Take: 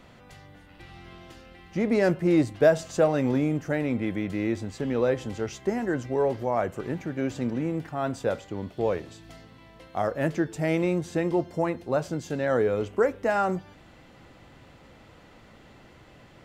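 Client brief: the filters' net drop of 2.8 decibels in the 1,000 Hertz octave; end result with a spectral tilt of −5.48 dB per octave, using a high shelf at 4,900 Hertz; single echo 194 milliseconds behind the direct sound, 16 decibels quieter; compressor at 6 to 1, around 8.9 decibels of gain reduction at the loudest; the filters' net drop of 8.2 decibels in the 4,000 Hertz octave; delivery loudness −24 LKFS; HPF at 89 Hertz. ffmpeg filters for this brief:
ffmpeg -i in.wav -af "highpass=89,equalizer=frequency=1000:width_type=o:gain=-3.5,equalizer=frequency=4000:width_type=o:gain=-8.5,highshelf=frequency=4900:gain=-5,acompressor=threshold=-26dB:ratio=6,aecho=1:1:194:0.158,volume=8dB" out.wav

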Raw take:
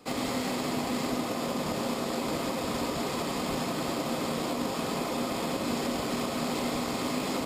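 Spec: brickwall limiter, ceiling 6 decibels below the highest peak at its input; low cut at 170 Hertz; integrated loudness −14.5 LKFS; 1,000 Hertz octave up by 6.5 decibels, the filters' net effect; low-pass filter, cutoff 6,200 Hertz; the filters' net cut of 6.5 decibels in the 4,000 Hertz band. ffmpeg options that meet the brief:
ffmpeg -i in.wav -af "highpass=170,lowpass=6200,equalizer=frequency=1000:width_type=o:gain=8.5,equalizer=frequency=4000:width_type=o:gain=-8,volume=17dB,alimiter=limit=-5.5dB:level=0:latency=1" out.wav

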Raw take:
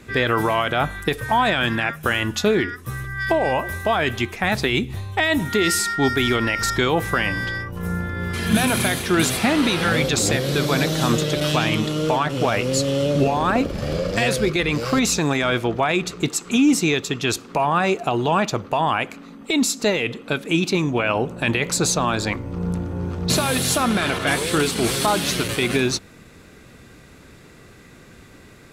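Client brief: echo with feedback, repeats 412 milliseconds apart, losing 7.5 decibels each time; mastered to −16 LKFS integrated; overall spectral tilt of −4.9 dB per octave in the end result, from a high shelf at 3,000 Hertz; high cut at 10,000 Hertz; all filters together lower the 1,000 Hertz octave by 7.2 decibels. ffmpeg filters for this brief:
ffmpeg -i in.wav -af "lowpass=10000,equalizer=frequency=1000:width_type=o:gain=-9,highshelf=frequency=3000:gain=-8,aecho=1:1:412|824|1236|1648|2060:0.422|0.177|0.0744|0.0312|0.0131,volume=7dB" out.wav

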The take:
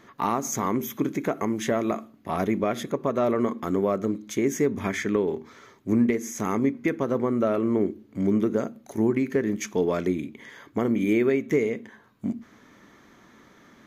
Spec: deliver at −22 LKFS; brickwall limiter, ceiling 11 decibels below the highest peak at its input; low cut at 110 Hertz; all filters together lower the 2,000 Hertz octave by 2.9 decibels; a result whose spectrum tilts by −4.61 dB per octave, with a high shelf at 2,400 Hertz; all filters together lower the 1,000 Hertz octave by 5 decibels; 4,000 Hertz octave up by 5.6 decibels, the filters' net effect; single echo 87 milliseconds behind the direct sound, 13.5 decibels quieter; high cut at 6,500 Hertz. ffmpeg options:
ffmpeg -i in.wav -af "highpass=110,lowpass=6500,equalizer=frequency=1000:width_type=o:gain=-6.5,equalizer=frequency=2000:width_type=o:gain=-5.5,highshelf=frequency=2400:gain=5,equalizer=frequency=4000:width_type=o:gain=5.5,alimiter=limit=-22.5dB:level=0:latency=1,aecho=1:1:87:0.211,volume=10.5dB" out.wav

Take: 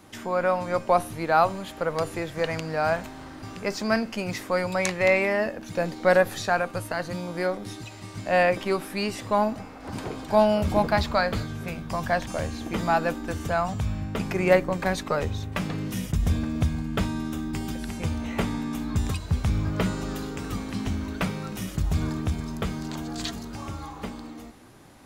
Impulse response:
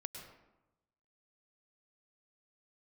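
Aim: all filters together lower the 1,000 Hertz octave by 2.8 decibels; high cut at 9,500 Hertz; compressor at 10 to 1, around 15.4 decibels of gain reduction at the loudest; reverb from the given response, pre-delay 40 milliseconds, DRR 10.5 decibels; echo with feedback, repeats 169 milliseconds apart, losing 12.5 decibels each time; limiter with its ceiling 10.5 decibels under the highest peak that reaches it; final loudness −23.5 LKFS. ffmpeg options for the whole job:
-filter_complex "[0:a]lowpass=9500,equalizer=frequency=1000:width_type=o:gain=-4,acompressor=threshold=-31dB:ratio=10,alimiter=level_in=4.5dB:limit=-24dB:level=0:latency=1,volume=-4.5dB,aecho=1:1:169|338|507:0.237|0.0569|0.0137,asplit=2[link_01][link_02];[1:a]atrim=start_sample=2205,adelay=40[link_03];[link_02][link_03]afir=irnorm=-1:irlink=0,volume=-7.5dB[link_04];[link_01][link_04]amix=inputs=2:normalize=0,volume=14.5dB"

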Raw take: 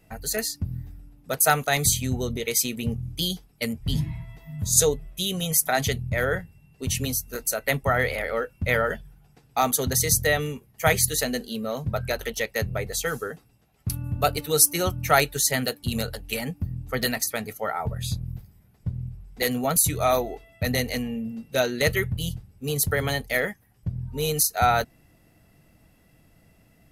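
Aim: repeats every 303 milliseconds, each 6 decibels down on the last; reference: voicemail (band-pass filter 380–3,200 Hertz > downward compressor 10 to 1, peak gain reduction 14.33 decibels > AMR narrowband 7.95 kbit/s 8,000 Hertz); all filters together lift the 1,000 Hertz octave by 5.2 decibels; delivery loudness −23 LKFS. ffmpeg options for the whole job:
ffmpeg -i in.wav -af "highpass=380,lowpass=3200,equalizer=frequency=1000:width_type=o:gain=8.5,aecho=1:1:303|606|909|1212|1515|1818:0.501|0.251|0.125|0.0626|0.0313|0.0157,acompressor=threshold=-23dB:ratio=10,volume=8dB" -ar 8000 -c:a libopencore_amrnb -b:a 7950 out.amr

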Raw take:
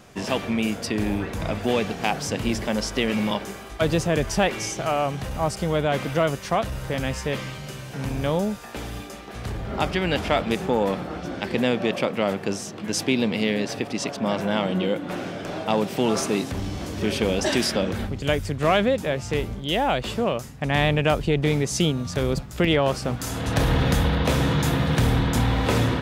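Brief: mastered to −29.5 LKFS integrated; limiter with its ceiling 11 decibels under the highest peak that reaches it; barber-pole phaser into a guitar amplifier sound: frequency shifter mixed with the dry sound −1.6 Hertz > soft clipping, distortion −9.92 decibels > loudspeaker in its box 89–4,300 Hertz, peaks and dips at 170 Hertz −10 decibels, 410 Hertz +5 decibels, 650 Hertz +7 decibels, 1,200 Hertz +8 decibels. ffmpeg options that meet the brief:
ffmpeg -i in.wav -filter_complex "[0:a]alimiter=limit=-17dB:level=0:latency=1,asplit=2[link_01][link_02];[link_02]afreqshift=-1.6[link_03];[link_01][link_03]amix=inputs=2:normalize=1,asoftclip=threshold=-30.5dB,highpass=89,equalizer=frequency=170:width_type=q:width=4:gain=-10,equalizer=frequency=410:width_type=q:width=4:gain=5,equalizer=frequency=650:width_type=q:width=4:gain=7,equalizer=frequency=1200:width_type=q:width=4:gain=8,lowpass=frequency=4300:width=0.5412,lowpass=frequency=4300:width=1.3066,volume=4.5dB" out.wav

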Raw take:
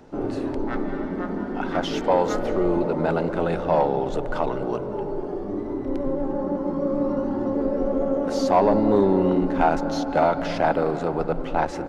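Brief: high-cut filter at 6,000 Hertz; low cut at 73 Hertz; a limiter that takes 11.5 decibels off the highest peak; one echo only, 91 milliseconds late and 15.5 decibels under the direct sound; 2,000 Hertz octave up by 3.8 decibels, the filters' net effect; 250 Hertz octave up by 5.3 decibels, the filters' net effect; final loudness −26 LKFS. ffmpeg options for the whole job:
ffmpeg -i in.wav -af "highpass=73,lowpass=6000,equalizer=frequency=250:width_type=o:gain=6.5,equalizer=frequency=2000:width_type=o:gain=5.5,alimiter=limit=-15.5dB:level=0:latency=1,aecho=1:1:91:0.168,volume=-2dB" out.wav

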